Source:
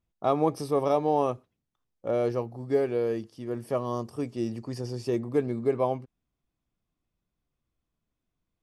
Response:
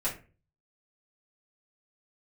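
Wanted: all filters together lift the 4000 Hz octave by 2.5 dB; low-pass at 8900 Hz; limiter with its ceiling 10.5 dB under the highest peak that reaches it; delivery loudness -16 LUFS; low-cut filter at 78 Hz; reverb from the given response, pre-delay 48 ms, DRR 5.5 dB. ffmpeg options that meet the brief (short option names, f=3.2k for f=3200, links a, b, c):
-filter_complex "[0:a]highpass=78,lowpass=8.9k,equalizer=f=4k:t=o:g=3.5,alimiter=limit=-22dB:level=0:latency=1,asplit=2[a][b];[1:a]atrim=start_sample=2205,adelay=48[c];[b][c]afir=irnorm=-1:irlink=0,volume=-12dB[d];[a][d]amix=inputs=2:normalize=0,volume=16.5dB"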